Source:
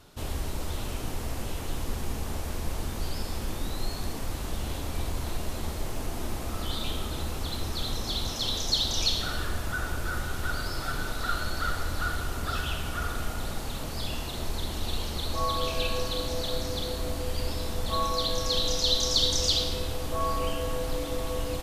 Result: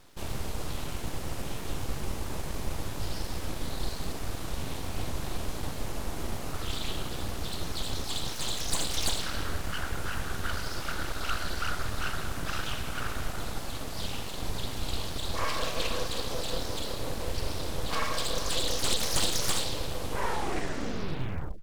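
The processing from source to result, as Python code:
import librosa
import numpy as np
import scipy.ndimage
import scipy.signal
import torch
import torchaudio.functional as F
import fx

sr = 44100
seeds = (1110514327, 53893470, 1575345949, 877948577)

y = fx.tape_stop_end(x, sr, length_s=1.61)
y = np.abs(y)
y = fx.quant_companded(y, sr, bits=8)
y = fx.doppler_dist(y, sr, depth_ms=0.59)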